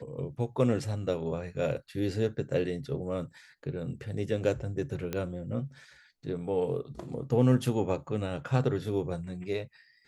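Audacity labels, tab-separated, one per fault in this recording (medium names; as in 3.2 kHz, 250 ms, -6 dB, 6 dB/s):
5.130000	5.130000	pop -18 dBFS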